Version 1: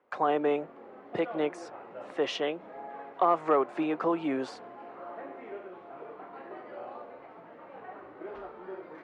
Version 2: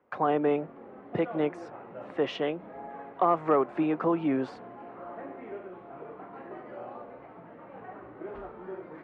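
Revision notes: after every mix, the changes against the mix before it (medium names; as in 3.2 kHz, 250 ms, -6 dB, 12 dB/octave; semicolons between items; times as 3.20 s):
master: add tone controls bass +10 dB, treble -12 dB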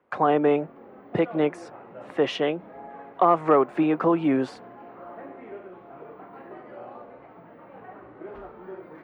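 speech +5.0 dB; master: remove distance through air 73 m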